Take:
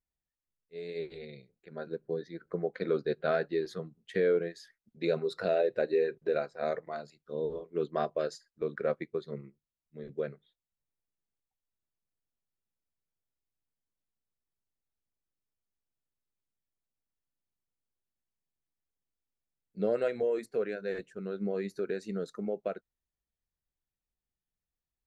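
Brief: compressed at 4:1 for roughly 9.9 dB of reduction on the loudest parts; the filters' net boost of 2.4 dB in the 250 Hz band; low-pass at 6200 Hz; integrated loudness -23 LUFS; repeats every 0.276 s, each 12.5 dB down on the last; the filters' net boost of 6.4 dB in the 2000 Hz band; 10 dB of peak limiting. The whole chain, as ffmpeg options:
-af "lowpass=6.2k,equalizer=f=250:t=o:g=3.5,equalizer=f=2k:t=o:g=8.5,acompressor=threshold=-34dB:ratio=4,alimiter=level_in=5dB:limit=-24dB:level=0:latency=1,volume=-5dB,aecho=1:1:276|552|828:0.237|0.0569|0.0137,volume=18dB"

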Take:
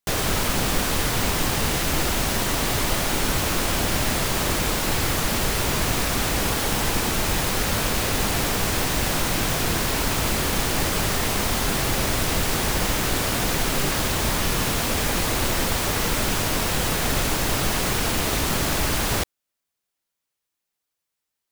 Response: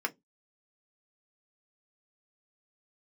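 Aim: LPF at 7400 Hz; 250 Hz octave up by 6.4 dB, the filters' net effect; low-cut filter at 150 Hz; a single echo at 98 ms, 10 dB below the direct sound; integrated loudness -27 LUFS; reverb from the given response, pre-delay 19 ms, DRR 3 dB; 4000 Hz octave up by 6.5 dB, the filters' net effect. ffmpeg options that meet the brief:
-filter_complex "[0:a]highpass=150,lowpass=7.4k,equalizer=f=250:t=o:g=9,equalizer=f=4k:t=o:g=8.5,aecho=1:1:98:0.316,asplit=2[a][b];[1:a]atrim=start_sample=2205,adelay=19[c];[b][c]afir=irnorm=-1:irlink=0,volume=-9dB[d];[a][d]amix=inputs=2:normalize=0,volume=-8.5dB"

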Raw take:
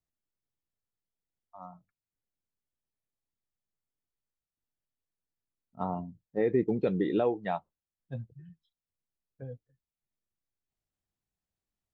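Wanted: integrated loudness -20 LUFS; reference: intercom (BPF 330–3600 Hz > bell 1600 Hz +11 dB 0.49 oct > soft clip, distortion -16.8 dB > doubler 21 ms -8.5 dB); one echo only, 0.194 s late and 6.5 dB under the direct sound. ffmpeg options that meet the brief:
-filter_complex "[0:a]highpass=330,lowpass=3.6k,equalizer=f=1.6k:t=o:w=0.49:g=11,aecho=1:1:194:0.473,asoftclip=threshold=-22dB,asplit=2[a][b];[b]adelay=21,volume=-8.5dB[c];[a][c]amix=inputs=2:normalize=0,volume=13dB"

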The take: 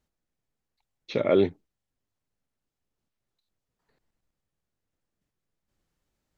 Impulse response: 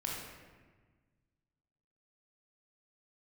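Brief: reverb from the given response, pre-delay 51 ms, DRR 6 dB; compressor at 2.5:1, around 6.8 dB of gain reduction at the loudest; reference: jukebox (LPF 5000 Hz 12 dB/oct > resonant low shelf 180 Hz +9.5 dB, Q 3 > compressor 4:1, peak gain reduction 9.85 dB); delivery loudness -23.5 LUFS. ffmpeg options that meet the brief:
-filter_complex "[0:a]acompressor=threshold=-26dB:ratio=2.5,asplit=2[a][b];[1:a]atrim=start_sample=2205,adelay=51[c];[b][c]afir=irnorm=-1:irlink=0,volume=-8.5dB[d];[a][d]amix=inputs=2:normalize=0,lowpass=5k,lowshelf=f=180:t=q:w=3:g=9.5,acompressor=threshold=-32dB:ratio=4,volume=15dB"

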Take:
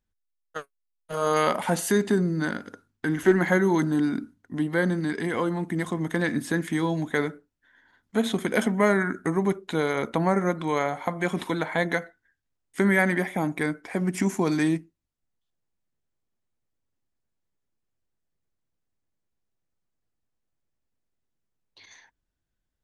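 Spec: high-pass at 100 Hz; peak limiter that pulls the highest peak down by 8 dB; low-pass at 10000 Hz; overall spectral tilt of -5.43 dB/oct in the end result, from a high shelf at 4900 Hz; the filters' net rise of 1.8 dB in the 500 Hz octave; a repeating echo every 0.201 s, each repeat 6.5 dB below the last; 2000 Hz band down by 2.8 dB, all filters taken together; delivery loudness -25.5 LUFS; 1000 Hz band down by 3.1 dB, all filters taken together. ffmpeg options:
-af "highpass=100,lowpass=10k,equalizer=f=500:t=o:g=3.5,equalizer=f=1k:t=o:g=-5,equalizer=f=2k:t=o:g=-3,highshelf=f=4.9k:g=8,alimiter=limit=-14.5dB:level=0:latency=1,aecho=1:1:201|402|603|804|1005|1206:0.473|0.222|0.105|0.0491|0.0231|0.0109"

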